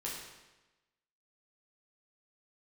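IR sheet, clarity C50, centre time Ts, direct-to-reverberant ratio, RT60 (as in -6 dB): 1.5 dB, 63 ms, -5.5 dB, 1.1 s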